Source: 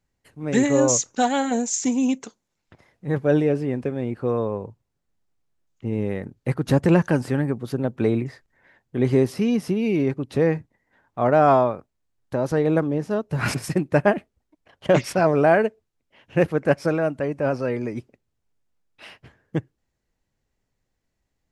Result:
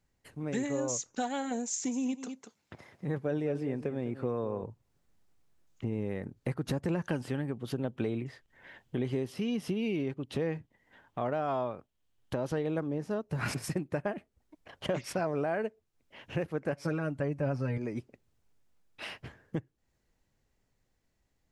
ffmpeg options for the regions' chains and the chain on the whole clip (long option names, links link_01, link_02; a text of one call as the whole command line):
ffmpeg -i in.wav -filter_complex "[0:a]asettb=1/sr,asplit=3[link_01][link_02][link_03];[link_01]atrim=end=1.714[link_04];[link_02]atrim=start=1.71:end=4.64,asetpts=PTS-STARTPTS,afade=type=in:duration=0.004:curve=qsin,afade=type=out:start_time=2.926:duration=0.004:curve=qsin,highpass=87,aecho=1:1:202:0.188,atrim=end_sample=129213[link_05];[link_03]atrim=start=4.636[link_06];[link_04][link_05]acrossfade=duration=0.004:curve1=hsin:curve2=qsin[link_07];[link_07][link_06]acrossfade=duration=0.004:curve1=qsin:curve2=hsin,asettb=1/sr,asplit=3[link_08][link_09][link_10];[link_08]atrim=end=7.064[link_11];[link_09]atrim=start=7.06:end=12.78,asetpts=PTS-STARTPTS,afade=type=in:duration=0.004:curve=qsin,afade=type=out:start_time=5.716:duration=0.004:curve=qsin,equalizer=frequency=3100:width_type=o:width=0.43:gain=9,tremolo=f=1.1:d=0.36[link_12];[link_10]atrim=start=12.776[link_13];[link_11][link_12]acrossfade=duration=0.004:curve1=hsin:curve2=qsin[link_14];[link_14][link_13]acrossfade=duration=0.004:curve1=qsin:curve2=hsin,asettb=1/sr,asplit=3[link_15][link_16][link_17];[link_15]atrim=end=16.724[link_18];[link_16]atrim=start=16.72:end=17.78,asetpts=PTS-STARTPTS,afade=type=in:duration=0.004:curve=qsin,afade=type=out:start_time=1.056:duration=0.004:curve=qsin,asubboost=boost=8.5:cutoff=200,aecho=1:1:7:0.68,atrim=end_sample=46746[link_19];[link_17]atrim=start=17.776[link_20];[link_18][link_19]acrossfade=duration=0.004:curve1=hsin:curve2=qsin[link_21];[link_21][link_20]acrossfade=duration=0.004:curve1=qsin:curve2=hsin,dynaudnorm=framelen=510:gausssize=11:maxgain=11.5dB,alimiter=limit=-6.5dB:level=0:latency=1:release=184,acompressor=threshold=-37dB:ratio=2.5" out.wav